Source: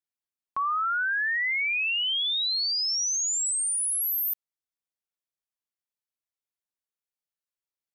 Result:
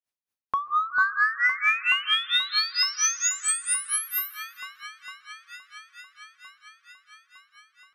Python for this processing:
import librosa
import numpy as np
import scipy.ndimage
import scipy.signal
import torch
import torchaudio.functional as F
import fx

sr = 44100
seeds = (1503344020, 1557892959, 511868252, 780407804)

p1 = x + fx.echo_wet_lowpass(x, sr, ms=455, feedback_pct=77, hz=1800.0, wet_db=-4, dry=0)
p2 = fx.granulator(p1, sr, seeds[0], grain_ms=236.0, per_s=4.4, spray_ms=39.0, spread_st=0)
p3 = fx.rev_plate(p2, sr, seeds[1], rt60_s=2.0, hf_ratio=0.45, predelay_ms=115, drr_db=17.5)
p4 = 10.0 ** (-29.5 / 20.0) * np.tanh(p3 / 10.0 ** (-29.5 / 20.0))
p5 = p3 + (p4 * 10.0 ** (-11.0 / 20.0))
p6 = fx.notch(p5, sr, hz=7500.0, q=12.0)
p7 = fx.end_taper(p6, sr, db_per_s=150.0)
y = p7 * 10.0 ** (7.0 / 20.0)